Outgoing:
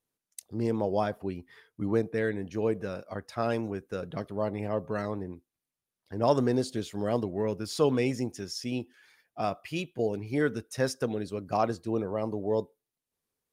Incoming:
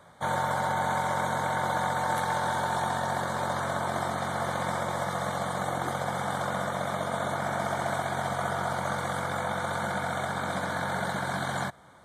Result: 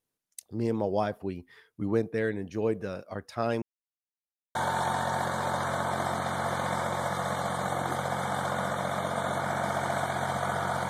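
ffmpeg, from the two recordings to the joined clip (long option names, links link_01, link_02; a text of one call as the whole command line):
ffmpeg -i cue0.wav -i cue1.wav -filter_complex "[0:a]apad=whole_dur=10.89,atrim=end=10.89,asplit=2[link_01][link_02];[link_01]atrim=end=3.62,asetpts=PTS-STARTPTS,afade=type=out:start_time=3.616:duration=0.004:curve=hsin[link_03];[link_02]atrim=start=3.62:end=4.55,asetpts=PTS-STARTPTS,volume=0[link_04];[1:a]atrim=start=2.51:end=8.85,asetpts=PTS-STARTPTS,afade=type=in:duration=0.004:curve=hsin[link_05];[link_03][link_04][link_05]concat=n=3:v=0:a=1" out.wav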